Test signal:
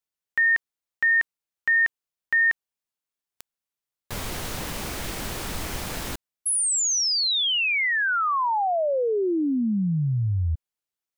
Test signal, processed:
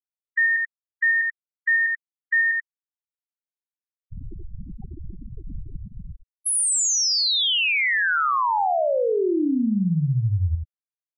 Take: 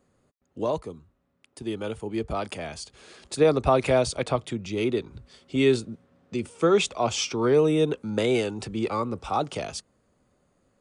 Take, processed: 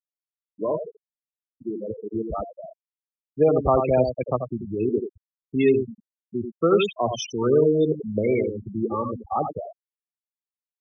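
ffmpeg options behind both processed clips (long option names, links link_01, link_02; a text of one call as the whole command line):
ffmpeg -i in.wav -af "aecho=1:1:86:0.531,afftfilt=real='re*gte(hypot(re,im),0.126)':imag='im*gte(hypot(re,im),0.126)':win_size=1024:overlap=0.75,volume=1dB" out.wav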